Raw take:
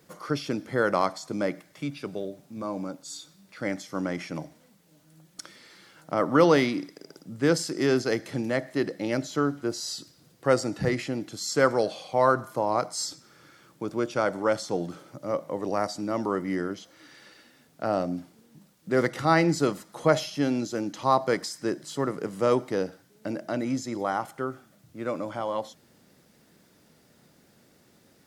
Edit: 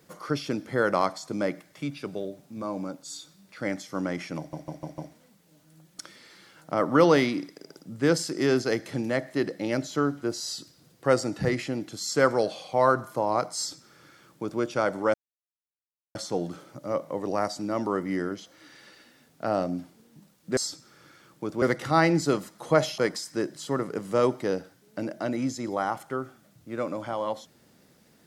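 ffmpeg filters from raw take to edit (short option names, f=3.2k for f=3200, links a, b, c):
-filter_complex "[0:a]asplit=9[a][b][c][d][e][f][g][h][i];[a]atrim=end=4.532[j];[b]atrim=start=4.378:end=4.532[k];[c]atrim=start=4.378:end=4.532[l];[d]atrim=start=4.378:end=4.532[m];[e]atrim=start=4.378:end=14.54,asetpts=PTS-STARTPTS,afade=t=out:st=10.158:d=0.004:c=hsin,apad=pad_dur=1.01[n];[f]atrim=start=14.54:end=18.962,asetpts=PTS-STARTPTS,afade=t=in:d=0.004:c=hsin[o];[g]atrim=start=12.958:end=14.012[p];[h]atrim=start=18.958:end=20.322[q];[i]atrim=start=21.258[r];[j][k]acrossfade=d=0.004:c1=hsin:c2=hsin[s];[s][l]acrossfade=d=0.004:c1=hsin:c2=hsin[t];[t][m]acrossfade=d=0.004:c1=hsin:c2=hsin[u];[n][o]concat=n=2:v=0:a=1[v];[u][v]acrossfade=d=0.004:c1=hsin:c2=hsin[w];[w][p]acrossfade=d=0.004:c1=hsin:c2=hsin[x];[x][q]acrossfade=d=0.004:c1=hsin:c2=hsin[y];[y][r]acrossfade=d=0.004:c1=hsin:c2=hsin"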